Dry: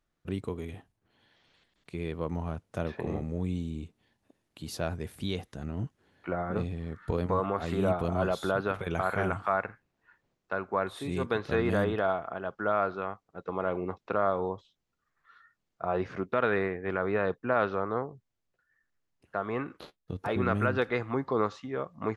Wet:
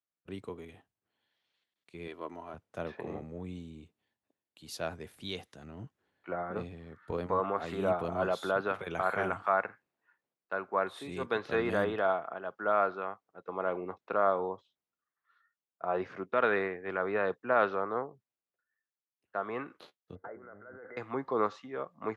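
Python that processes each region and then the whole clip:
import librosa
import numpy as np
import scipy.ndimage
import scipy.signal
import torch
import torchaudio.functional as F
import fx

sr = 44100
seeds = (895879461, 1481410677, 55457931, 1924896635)

y = fx.chain(x, sr, fx.highpass(hz=310.0, slope=6),
    fx.comb(ms=3.0, depth=0.49), at=(2.07, 2.54))
y = fx.chain(y, sr, fx.over_compress(threshold_db=-36.0, ratio=-1.0),
    fx.cheby_ripple(hz=2100.0, ripple_db=9),
    fx.transformer_sat(knee_hz=190.0), at=(20.15, 20.97))
y = fx.highpass(y, sr, hz=400.0, slope=6)
y = fx.high_shelf(y, sr, hz=4100.0, db=-6.5)
y = fx.band_widen(y, sr, depth_pct=40)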